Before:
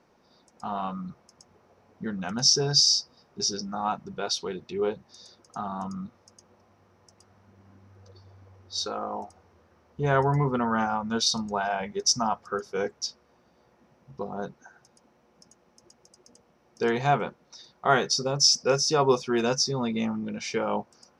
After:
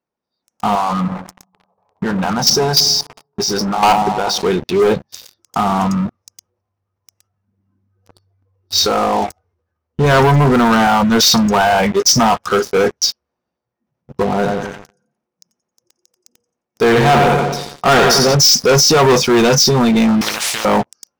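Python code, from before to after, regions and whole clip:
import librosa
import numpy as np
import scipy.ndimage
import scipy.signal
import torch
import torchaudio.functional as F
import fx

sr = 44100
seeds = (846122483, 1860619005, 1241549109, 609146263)

y = fx.chain(x, sr, fx.peak_eq(hz=900.0, db=13.5, octaves=1.3),
    fx.level_steps(step_db=18),
    fx.echo_wet_lowpass(ms=96, feedback_pct=69, hz=540.0, wet_db=-11.5), at=(0.75, 4.43))
y = fx.chain(y, sr, fx.high_shelf(hz=4500.0, db=-5.5),
    fx.echo_split(split_hz=560.0, low_ms=126, high_ms=88, feedback_pct=52, wet_db=-6), at=(14.37, 18.35))
y = fx.chain(y, sr, fx.cheby1_highpass(hz=1900.0, order=2),
    fx.spectral_comp(ratio=10.0), at=(20.21, 20.65))
y = fx.noise_reduce_blind(y, sr, reduce_db=12)
y = fx.transient(y, sr, attack_db=1, sustain_db=6)
y = fx.leveller(y, sr, passes=5)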